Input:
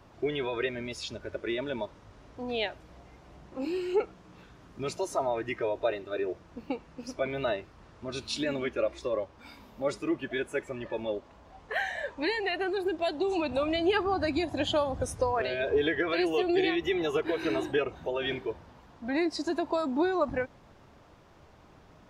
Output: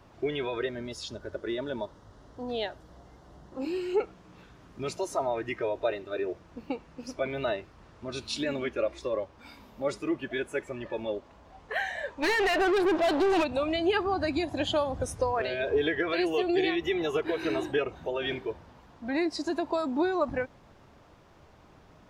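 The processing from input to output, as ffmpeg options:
-filter_complex "[0:a]asettb=1/sr,asplit=3[s0][s1][s2];[s0]atrim=end=0.594[s3];[s1]atrim=start=0.59:end=3.61,asetpts=PTS-STARTPTS,afade=t=in:d=0.004:c=qsin,afade=t=out:st=3.016:d=0.004:c=qsin,equalizer=f=2400:w=4:g=-13.5[s4];[s2]atrim=start=3.606[s5];[s3][s4]acrossfade=d=0.004:c1=hsin:c2=qsin[s6];[s6][s5]acrossfade=d=0.004:c1=qsin:c2=hsin,asplit=3[s7][s8][s9];[s7]afade=t=out:st=12.22:d=0.02[s10];[s8]asplit=2[s11][s12];[s12]highpass=f=720:p=1,volume=25.1,asoftclip=type=tanh:threshold=0.133[s13];[s11][s13]amix=inputs=2:normalize=0,lowpass=f=1900:p=1,volume=0.501,afade=t=in:st=12.22:d=0.02,afade=t=out:st=13.43:d=0.02[s14];[s9]afade=t=in:st=13.43:d=0.02[s15];[s10][s14][s15]amix=inputs=3:normalize=0"

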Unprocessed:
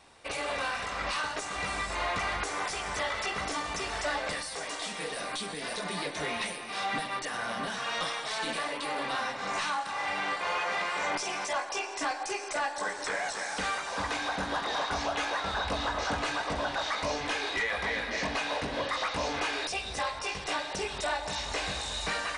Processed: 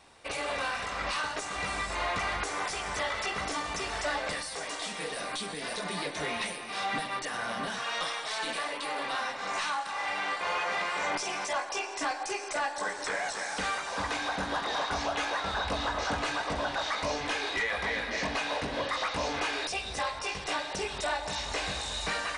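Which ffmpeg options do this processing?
-filter_complex "[0:a]asettb=1/sr,asplit=3[s0][s1][s2];[s0]atrim=end=7.814[s3];[s1]atrim=start=7.81:end=10.41,asetpts=PTS-STARTPTS,afade=t=in:d=0.004:c=qsin,afade=t=out:st=2.596:d=0.004:c=qsin,equalizer=f=120:t=o:w=2.7:g=-7[s4];[s2]atrim=start=10.406[s5];[s3][s4]acrossfade=d=0.004:c1=hsin:c2=qsin[s6];[s6][s5]acrossfade=d=0.004:c1=qsin:c2=hsin"

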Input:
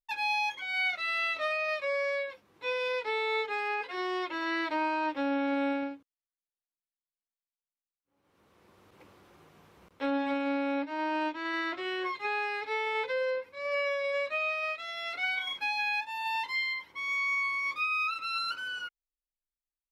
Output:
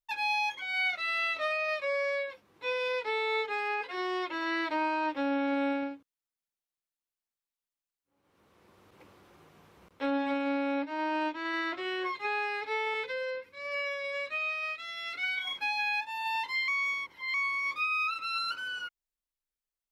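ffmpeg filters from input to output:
-filter_complex "[0:a]asettb=1/sr,asplit=3[s0][s1][s2];[s0]atrim=end=12.944[s3];[s1]atrim=start=12.94:end=15.45,asetpts=PTS-STARTPTS,afade=t=in:d=0.004:c=qsin,afade=t=out:st=2.506:d=0.004:c=qsin,equalizer=f=740:t=o:w=0.9:g=-11.5[s4];[s2]atrim=start=15.446[s5];[s3][s4]acrossfade=d=0.004:c1=hsin:c2=qsin[s6];[s6][s5]acrossfade=d=0.004:c1=qsin:c2=hsin,asplit=3[s7][s8][s9];[s7]atrim=end=16.682[s10];[s8]atrim=start=16.678:end=17.342,asetpts=PTS-STARTPTS,areverse[s11];[s9]atrim=start=17.338[s12];[s10][s11]acrossfade=d=0.004:c1=hsin:c2=hsin[s13];[s13][s12]acrossfade=d=0.004:c1=hsin:c2=hsin"

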